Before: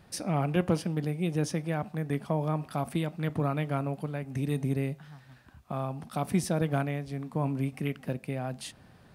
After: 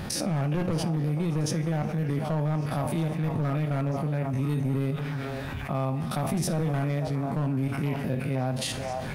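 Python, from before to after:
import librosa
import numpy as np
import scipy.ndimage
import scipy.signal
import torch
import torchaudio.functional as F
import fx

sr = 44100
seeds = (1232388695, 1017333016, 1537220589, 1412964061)

y = fx.spec_steps(x, sr, hold_ms=50)
y = fx.peak_eq(y, sr, hz=8500.0, db=-3.5, octaves=0.31)
y = fx.echo_stepped(y, sr, ms=491, hz=800.0, octaves=0.7, feedback_pct=70, wet_db=-9)
y = np.clip(y, -10.0 ** (-25.0 / 20.0), 10.0 ** (-25.0 / 20.0))
y = fx.low_shelf(y, sr, hz=180.0, db=4.5)
y = fx.rev_double_slope(y, sr, seeds[0], early_s=0.29, late_s=2.5, knee_db=-16, drr_db=10.5)
y = fx.env_flatten(y, sr, amount_pct=70)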